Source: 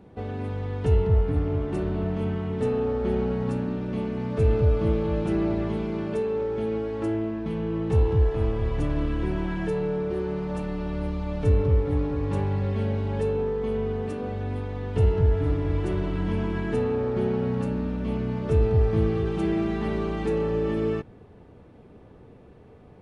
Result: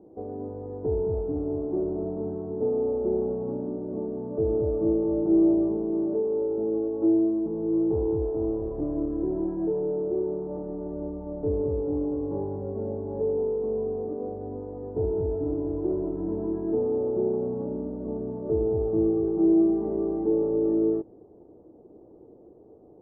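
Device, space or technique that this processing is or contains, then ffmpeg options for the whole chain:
under water: -af "lowpass=f=730:w=0.5412,lowpass=f=730:w=1.3066,bass=f=250:g=-13,treble=f=4k:g=-10,equalizer=f=330:t=o:w=0.4:g=11"

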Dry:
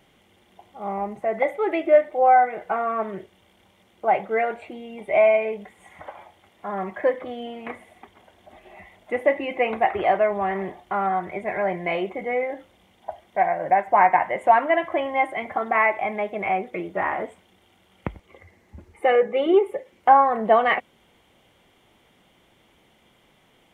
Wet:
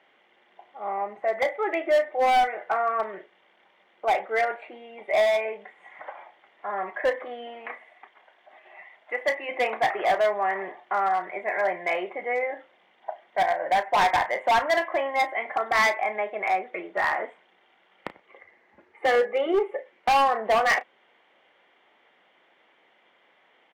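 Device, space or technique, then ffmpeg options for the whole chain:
megaphone: -filter_complex "[0:a]asettb=1/sr,asplit=3[a][b][c];[a]atrim=end=7.664[d];[b]atrim=start=7.66:end=9.49,asetpts=PTS-STARTPTS,afade=t=in:d=0.004:c=qsin,afade=t=out:st=1.826:d=0.004:c=qsin,lowshelf=f=490:g=-9.5[e];[c]atrim=start=9.486[f];[d][e]acrossfade=d=0.004:c1=hsin:c2=qsin[g];[g][f]acrossfade=d=0.004:c1=qsin:c2=hsin,highpass=500,lowpass=2.7k,equalizer=f=1.8k:t=o:w=0.45:g=5,asoftclip=type=hard:threshold=-17.5dB,asplit=2[h][i];[i]adelay=33,volume=-13.5dB[j];[h][j]amix=inputs=2:normalize=0"

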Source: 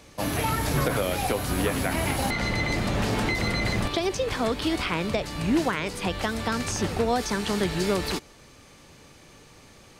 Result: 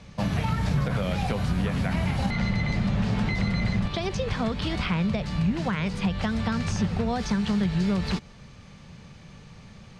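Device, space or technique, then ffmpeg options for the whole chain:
jukebox: -af "lowpass=5.2k,lowshelf=f=240:t=q:w=3:g=6.5,acompressor=threshold=-23dB:ratio=3"

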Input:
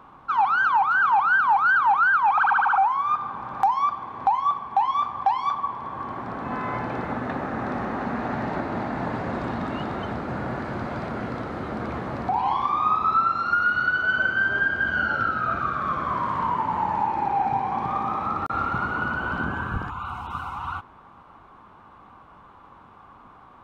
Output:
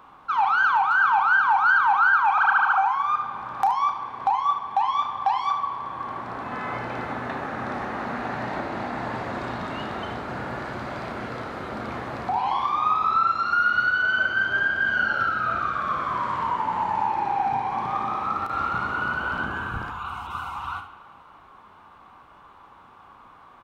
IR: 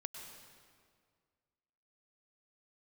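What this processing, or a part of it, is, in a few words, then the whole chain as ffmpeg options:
filtered reverb send: -filter_complex "[0:a]highshelf=f=2.8k:g=11,aecho=1:1:33|74:0.335|0.299,asplit=2[a][b];[b]highpass=300,lowpass=4.4k[c];[1:a]atrim=start_sample=2205[d];[c][d]afir=irnorm=-1:irlink=0,volume=-3.5dB[e];[a][e]amix=inputs=2:normalize=0,volume=-5.5dB"

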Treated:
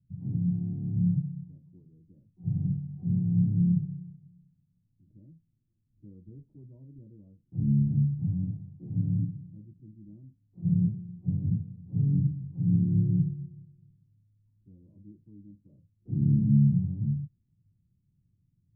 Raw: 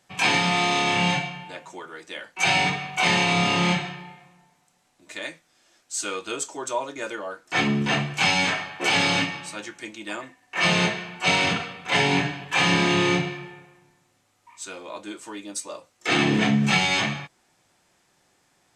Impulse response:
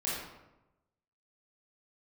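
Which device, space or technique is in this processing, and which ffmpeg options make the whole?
the neighbour's flat through the wall: -af "lowpass=f=160:w=0.5412,lowpass=f=160:w=1.3066,equalizer=f=100:t=o:w=0.46:g=6,volume=6dB"

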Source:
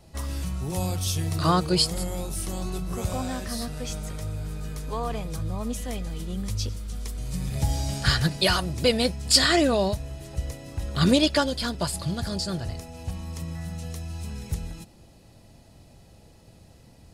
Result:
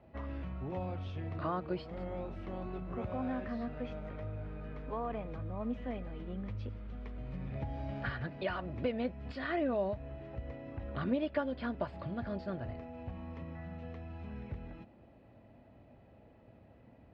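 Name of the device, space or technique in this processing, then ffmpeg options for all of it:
bass amplifier: -af "acompressor=threshold=-28dB:ratio=3,highpass=61,equalizer=f=80:t=q:w=4:g=-5,equalizer=f=160:t=q:w=4:g=-7,equalizer=f=250:t=q:w=4:g=5,equalizer=f=610:t=q:w=4:g=5,lowpass=f=2.4k:w=0.5412,lowpass=f=2.4k:w=1.3066,volume=-5.5dB"

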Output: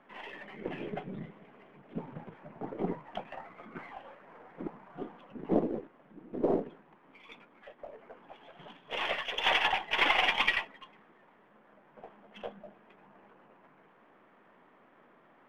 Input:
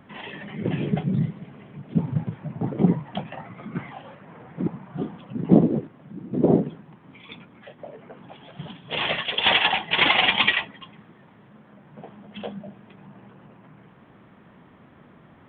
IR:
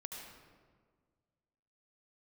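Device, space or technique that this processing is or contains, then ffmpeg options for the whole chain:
crystal radio: -af "highpass=390,lowpass=2.6k,aeval=exprs='if(lt(val(0),0),0.708*val(0),val(0))':c=same,volume=-4dB"

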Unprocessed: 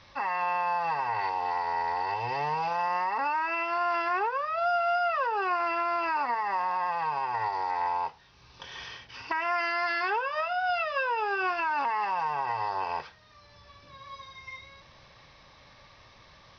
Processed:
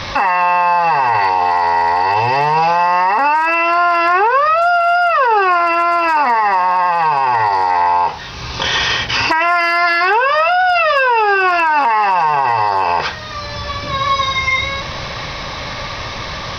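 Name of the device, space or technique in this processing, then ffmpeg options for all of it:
loud club master: -af "acompressor=threshold=-35dB:ratio=2,asoftclip=type=hard:threshold=-26.5dB,alimiter=level_in=35.5dB:limit=-1dB:release=50:level=0:latency=1,volume=-5.5dB"

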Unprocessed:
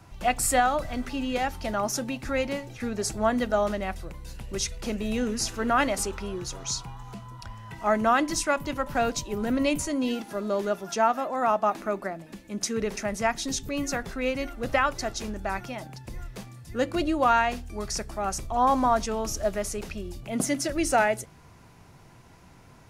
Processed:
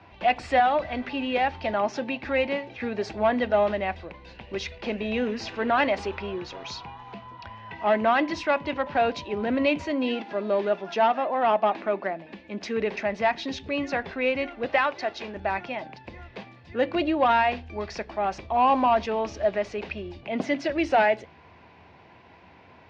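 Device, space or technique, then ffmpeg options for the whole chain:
overdrive pedal into a guitar cabinet: -filter_complex "[0:a]asettb=1/sr,asplit=3[a][b][c];[a]atrim=end=14.664[d];[b]atrim=start=14.66:end=15.35,asetpts=PTS-STARTPTS,afade=t=in:d=0.004:c=qsin,afade=t=out:st=0.686:d=0.004:c=qsin,highpass=f=320:p=1[e];[c]atrim=start=15.346[f];[d][e]acrossfade=d=0.004:c1=hsin:c2=qsin[g];[g][f]acrossfade=d=0.004:c1=qsin:c2=hsin,highshelf=f=4.7k:g=-5.5,asplit=2[h][i];[i]highpass=f=720:p=1,volume=13dB,asoftclip=type=tanh:threshold=-9dB[j];[h][j]amix=inputs=2:normalize=0,lowpass=f=2.5k:p=1,volume=-6dB,highpass=76,equalizer=f=80:t=q:w=4:g=9,equalizer=f=130:t=q:w=4:g=-7,equalizer=f=1.3k:t=q:w=4:g=-9,equalizer=f=2.5k:t=q:w=4:g=3,lowpass=f=4.4k:w=0.5412,lowpass=f=4.4k:w=1.3066"

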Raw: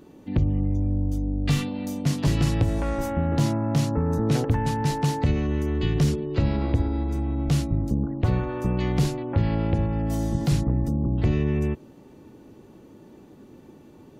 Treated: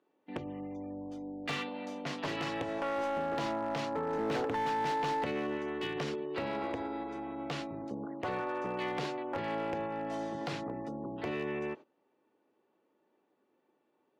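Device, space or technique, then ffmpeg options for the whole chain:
walkie-talkie: -filter_complex "[0:a]asettb=1/sr,asplit=3[a][b][c];[a]atrim=end=4.134[d];[b]atrim=start=4.13:end=5.58,asetpts=PTS-STARTPTS,afade=t=in:d=0.004:c=qsin,afade=t=out:st=1.446:d=0.004:c=qsin,equalizer=f=270:w=0.67:g=3[e];[c]atrim=start=5.576[f];[d][e]acrossfade=d=0.004:c1=hsin:c2=qsin[g];[g][f]acrossfade=d=0.004:c1=qsin:c2=hsin,highpass=530,lowpass=2.9k,asoftclip=type=hard:threshold=-28.5dB,agate=range=-18dB:threshold=-46dB:ratio=16:detection=peak"

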